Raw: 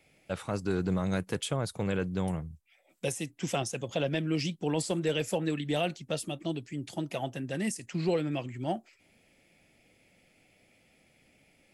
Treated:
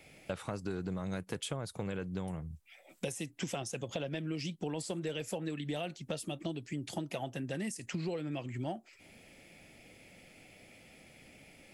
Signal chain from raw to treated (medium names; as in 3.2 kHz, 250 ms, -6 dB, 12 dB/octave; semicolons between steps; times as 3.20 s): compression 6:1, threshold -43 dBFS, peak gain reduction 17.5 dB; trim +7.5 dB